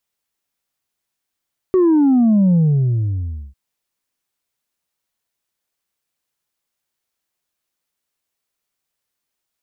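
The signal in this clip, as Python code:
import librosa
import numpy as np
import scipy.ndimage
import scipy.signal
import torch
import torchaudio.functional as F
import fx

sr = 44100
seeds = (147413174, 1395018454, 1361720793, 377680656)

y = fx.sub_drop(sr, level_db=-10.5, start_hz=380.0, length_s=1.8, drive_db=2, fade_s=1.0, end_hz=65.0)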